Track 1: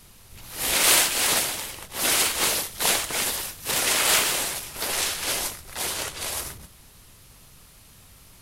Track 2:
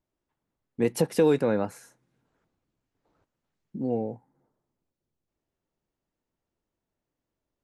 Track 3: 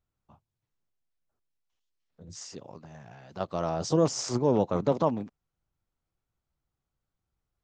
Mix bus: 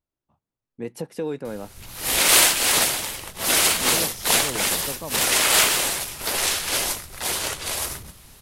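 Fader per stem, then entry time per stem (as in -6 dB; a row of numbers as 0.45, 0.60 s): +3.0, -7.5, -10.0 dB; 1.45, 0.00, 0.00 s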